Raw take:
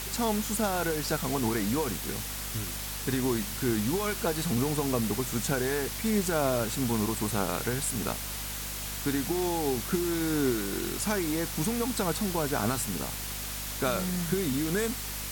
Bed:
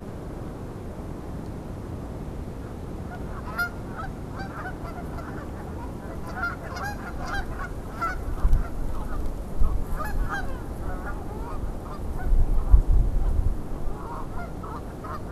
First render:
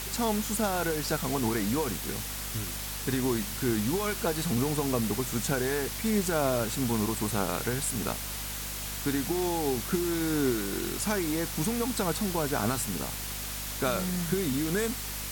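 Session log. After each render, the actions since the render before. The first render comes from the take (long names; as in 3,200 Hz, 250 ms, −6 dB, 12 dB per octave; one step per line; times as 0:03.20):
no processing that can be heard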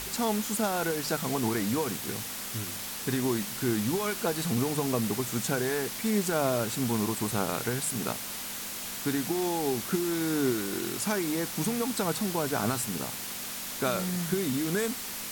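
hum removal 50 Hz, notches 3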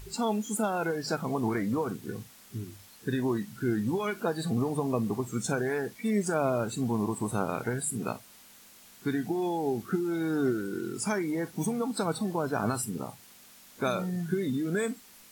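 noise reduction from a noise print 17 dB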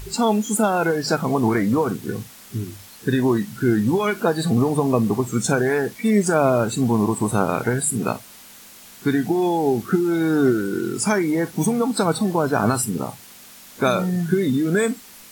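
level +10 dB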